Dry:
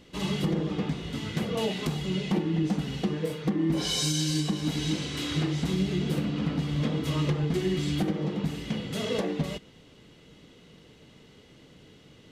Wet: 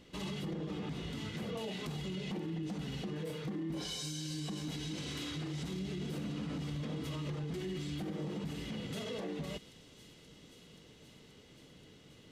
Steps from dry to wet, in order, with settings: feedback echo behind a high-pass 529 ms, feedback 80%, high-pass 4.1 kHz, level -16 dB; peak limiter -27.5 dBFS, peak gain reduction 10.5 dB; trim -4.5 dB

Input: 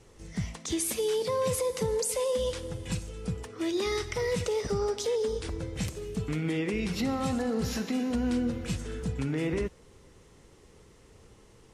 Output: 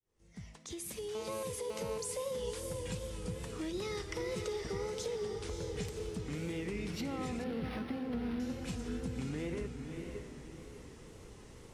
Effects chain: fade-in on the opening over 2.53 s; compression 2.5:1, threshold -43 dBFS, peak gain reduction 12 dB; echo that smears into a reverb 577 ms, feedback 40%, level -5 dB; wow and flutter 67 cents; 1.15–1.98 s: mobile phone buzz -47 dBFS; 7.44–8.40 s: decimation joined by straight lines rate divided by 6×; trim +1 dB

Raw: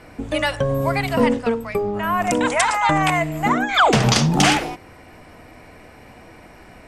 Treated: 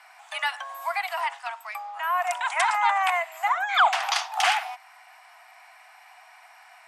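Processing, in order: dynamic bell 6.9 kHz, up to -8 dB, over -38 dBFS, Q 0.76; steep high-pass 690 Hz 96 dB/octave; trim -3 dB

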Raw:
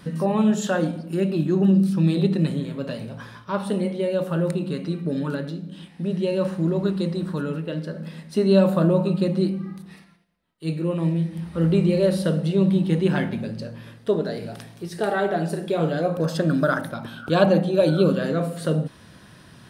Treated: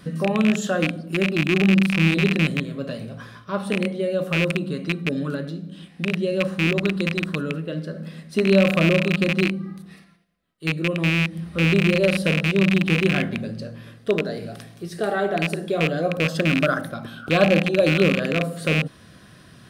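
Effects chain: rattle on loud lows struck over -23 dBFS, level -11 dBFS; Butterworth band-stop 900 Hz, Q 6

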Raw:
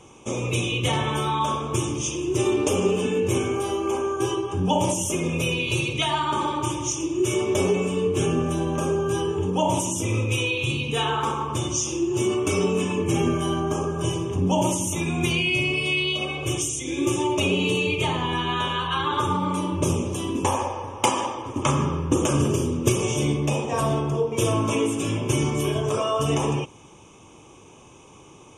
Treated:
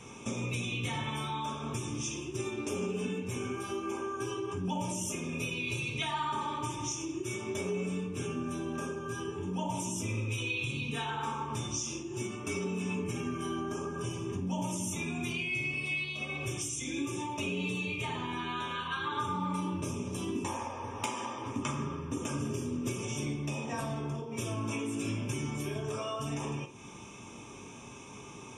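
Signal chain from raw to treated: compression 4:1, threshold -36 dBFS, peak gain reduction 17.5 dB; reverberation RT60 0.35 s, pre-delay 3 ms, DRR 1 dB

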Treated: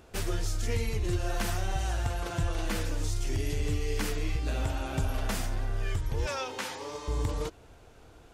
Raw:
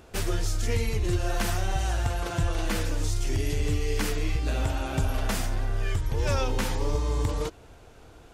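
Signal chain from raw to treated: 6.26–7.08 s: frequency weighting A; trim -3.5 dB

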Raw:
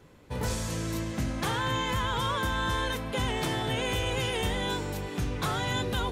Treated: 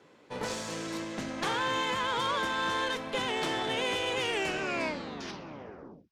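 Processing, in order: tape stop on the ending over 1.96 s; band-pass 270–6500 Hz; on a send: feedback echo behind a high-pass 64 ms, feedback 71%, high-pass 3.8 kHz, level -18 dB; on the sum: Chebyshev shaper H 6 -22 dB, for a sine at -18.5 dBFS

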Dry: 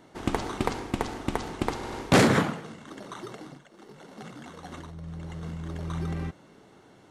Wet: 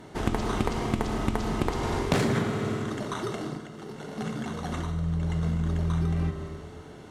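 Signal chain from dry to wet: one-sided clip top -15.5 dBFS, bottom -10.5 dBFS; bass shelf 120 Hz +9 dB; reverberation RT60 1.4 s, pre-delay 4 ms, DRR 5 dB; compression 6:1, threshold -29 dBFS, peak gain reduction 15 dB; trim +6 dB

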